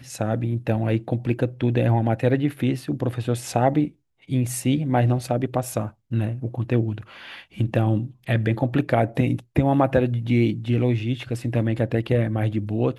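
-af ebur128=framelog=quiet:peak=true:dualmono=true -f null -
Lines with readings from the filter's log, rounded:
Integrated loudness:
  I:         -20.3 LUFS
  Threshold: -30.5 LUFS
Loudness range:
  LRA:         3.1 LU
  Threshold: -40.5 LUFS
  LRA low:   -22.2 LUFS
  LRA high:  -19.0 LUFS
True peak:
  Peak:       -5.6 dBFS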